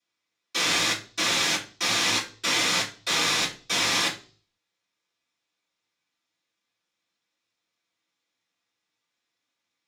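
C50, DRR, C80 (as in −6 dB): 11.0 dB, −12.0 dB, 16.0 dB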